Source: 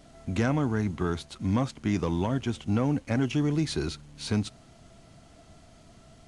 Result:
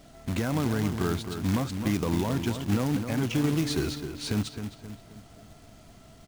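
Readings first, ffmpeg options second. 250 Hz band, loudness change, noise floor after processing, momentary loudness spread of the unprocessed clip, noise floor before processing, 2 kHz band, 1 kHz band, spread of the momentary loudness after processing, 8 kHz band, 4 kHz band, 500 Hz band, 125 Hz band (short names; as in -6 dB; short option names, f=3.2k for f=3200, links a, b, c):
0.0 dB, 0.0 dB, -52 dBFS, 6 LU, -55 dBFS, +0.5 dB, -0.5 dB, 9 LU, +4.0 dB, +2.5 dB, -0.5 dB, 0.0 dB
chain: -filter_complex "[0:a]alimiter=limit=-18.5dB:level=0:latency=1:release=75,asplit=2[a][b];[b]adelay=263,lowpass=f=2.5k:p=1,volume=-8dB,asplit=2[c][d];[d]adelay=263,lowpass=f=2.5k:p=1,volume=0.46,asplit=2[e][f];[f]adelay=263,lowpass=f=2.5k:p=1,volume=0.46,asplit=2[g][h];[h]adelay=263,lowpass=f=2.5k:p=1,volume=0.46,asplit=2[i][j];[j]adelay=263,lowpass=f=2.5k:p=1,volume=0.46[k];[a][c][e][g][i][k]amix=inputs=6:normalize=0,acrusher=bits=3:mode=log:mix=0:aa=0.000001,volume=1dB"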